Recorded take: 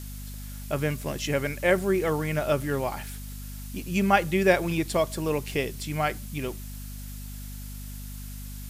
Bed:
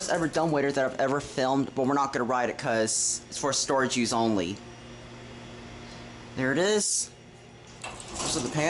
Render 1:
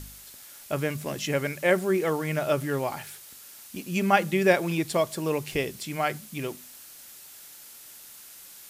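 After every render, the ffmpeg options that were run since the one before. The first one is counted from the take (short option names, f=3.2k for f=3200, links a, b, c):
-af "bandreject=f=50:t=h:w=4,bandreject=f=100:t=h:w=4,bandreject=f=150:t=h:w=4,bandreject=f=200:t=h:w=4,bandreject=f=250:t=h:w=4"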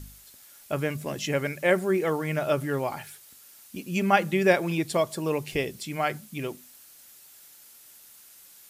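-af "afftdn=nr=6:nf=-47"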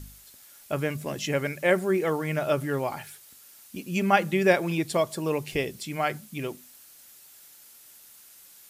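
-af anull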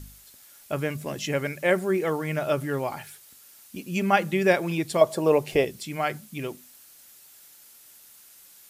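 -filter_complex "[0:a]asettb=1/sr,asplit=3[a][b][c];[a]atrim=end=5.014[d];[b]atrim=start=5.01:end=5.65,asetpts=PTS-STARTPTS,afade=t=in:d=0.004:c=qsin,afade=t=out:st=0.636:d=0.004:c=qsin,equalizer=f=610:w=0.88:g=10.5[e];[c]atrim=start=5.646[f];[d][e]acrossfade=d=0.004:c1=hsin:c2=qsin[g];[g][f]acrossfade=d=0.004:c1=qsin:c2=hsin"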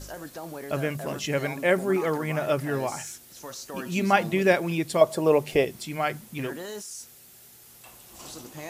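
-filter_complex "[1:a]volume=-13dB[a];[0:a][a]amix=inputs=2:normalize=0"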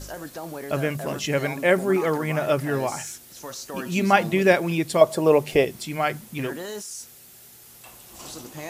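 -af "volume=3dB"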